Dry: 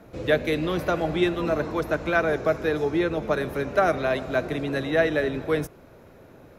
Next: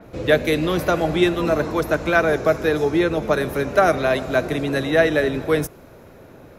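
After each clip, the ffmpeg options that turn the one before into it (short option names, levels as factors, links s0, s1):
-af "adynamicequalizer=threshold=0.00501:dfrequency=5100:dqfactor=0.7:tfrequency=5100:tqfactor=0.7:attack=5:release=100:ratio=0.375:range=3:mode=boostabove:tftype=highshelf,volume=1.78"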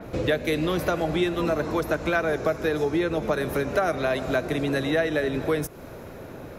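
-af "acompressor=threshold=0.0355:ratio=3,volume=1.68"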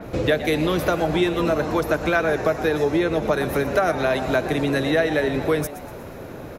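-filter_complex "[0:a]asplit=5[s0][s1][s2][s3][s4];[s1]adelay=120,afreqshift=130,volume=0.2[s5];[s2]adelay=240,afreqshift=260,volume=0.0902[s6];[s3]adelay=360,afreqshift=390,volume=0.0403[s7];[s4]adelay=480,afreqshift=520,volume=0.0182[s8];[s0][s5][s6][s7][s8]amix=inputs=5:normalize=0,volume=1.5"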